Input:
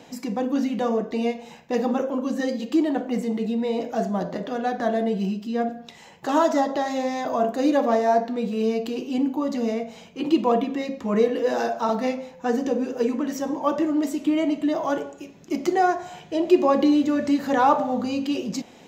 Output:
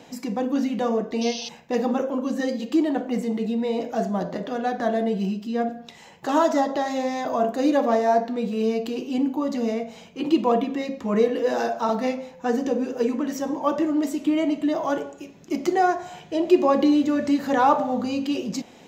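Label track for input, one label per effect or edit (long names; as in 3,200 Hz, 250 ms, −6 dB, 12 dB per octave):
1.210000	1.490000	sound drawn into the spectrogram noise 2,500–6,400 Hz −34 dBFS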